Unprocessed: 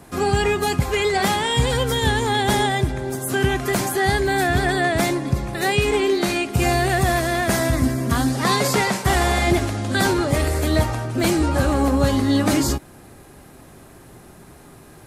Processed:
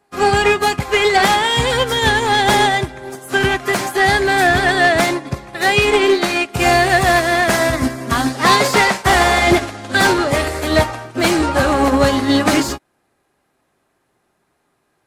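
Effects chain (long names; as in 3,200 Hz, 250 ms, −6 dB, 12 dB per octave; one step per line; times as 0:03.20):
mid-hump overdrive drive 15 dB, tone 3,900 Hz, clips at −8 dBFS
echo ahead of the sound 208 ms −24 dB
expander for the loud parts 2.5 to 1, over −35 dBFS
level +6 dB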